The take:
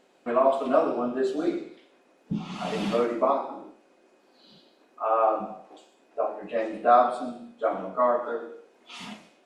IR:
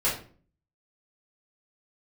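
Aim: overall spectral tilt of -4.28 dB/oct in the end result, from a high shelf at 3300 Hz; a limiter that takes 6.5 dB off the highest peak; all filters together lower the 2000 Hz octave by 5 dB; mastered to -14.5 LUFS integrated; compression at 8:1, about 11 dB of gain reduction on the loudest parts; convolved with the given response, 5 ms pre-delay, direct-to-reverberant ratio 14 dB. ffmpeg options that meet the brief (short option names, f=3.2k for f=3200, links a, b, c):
-filter_complex "[0:a]equalizer=f=2k:t=o:g=-6,highshelf=f=3.3k:g=-4.5,acompressor=threshold=-26dB:ratio=8,alimiter=limit=-23.5dB:level=0:latency=1,asplit=2[a][b];[1:a]atrim=start_sample=2205,adelay=5[c];[b][c]afir=irnorm=-1:irlink=0,volume=-25dB[d];[a][d]amix=inputs=2:normalize=0,volume=20dB"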